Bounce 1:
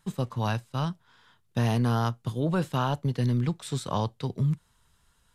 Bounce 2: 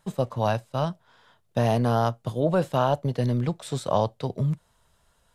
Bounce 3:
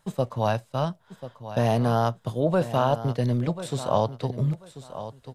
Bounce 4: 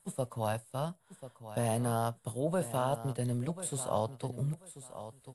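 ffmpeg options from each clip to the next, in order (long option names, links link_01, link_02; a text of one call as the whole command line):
ffmpeg -i in.wav -af "equalizer=frequency=610:width_type=o:width=0.79:gain=12" out.wav
ffmpeg -i in.wav -af "aecho=1:1:1039|2078:0.224|0.047" out.wav
ffmpeg -i in.wav -filter_complex "[0:a]acrossover=split=2200[link_01][link_02];[link_02]aexciter=amount=14.3:drive=4.3:freq=8500[link_03];[link_01][link_03]amix=inputs=2:normalize=0,volume=-9dB" -ar 24000 -c:a aac -b:a 64k out.aac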